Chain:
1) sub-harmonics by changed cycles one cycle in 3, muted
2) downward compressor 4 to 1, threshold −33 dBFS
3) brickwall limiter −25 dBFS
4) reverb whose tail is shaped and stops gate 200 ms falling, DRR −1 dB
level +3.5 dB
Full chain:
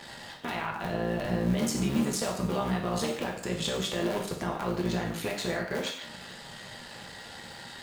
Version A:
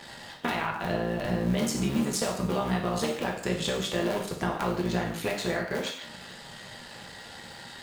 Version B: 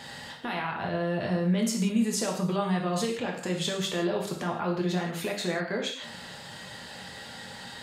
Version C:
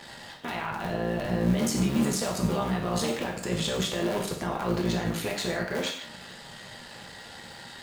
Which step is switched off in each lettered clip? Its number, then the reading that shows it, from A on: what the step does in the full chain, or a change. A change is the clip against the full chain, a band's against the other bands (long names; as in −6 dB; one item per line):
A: 3, change in crest factor +1.5 dB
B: 1, change in integrated loudness +1.5 LU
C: 2, average gain reduction 6.5 dB